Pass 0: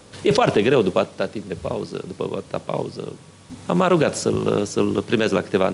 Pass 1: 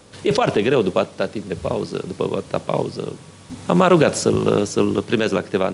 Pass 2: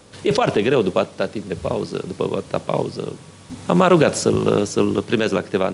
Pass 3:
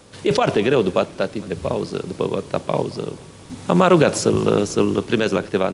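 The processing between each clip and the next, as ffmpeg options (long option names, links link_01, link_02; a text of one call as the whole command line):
ffmpeg -i in.wav -af "dynaudnorm=framelen=220:gausssize=11:maxgain=11.5dB,volume=-1dB" out.wav
ffmpeg -i in.wav -af anull out.wav
ffmpeg -i in.wav -filter_complex "[0:a]asplit=5[link_01][link_02][link_03][link_04][link_05];[link_02]adelay=219,afreqshift=-39,volume=-22.5dB[link_06];[link_03]adelay=438,afreqshift=-78,volume=-27.1dB[link_07];[link_04]adelay=657,afreqshift=-117,volume=-31.7dB[link_08];[link_05]adelay=876,afreqshift=-156,volume=-36.2dB[link_09];[link_01][link_06][link_07][link_08][link_09]amix=inputs=5:normalize=0" out.wav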